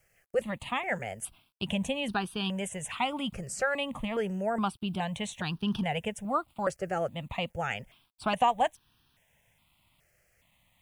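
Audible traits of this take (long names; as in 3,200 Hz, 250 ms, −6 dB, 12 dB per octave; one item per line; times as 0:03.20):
a quantiser's noise floor 12 bits, dither none
notches that jump at a steady rate 2.4 Hz 980–2,100 Hz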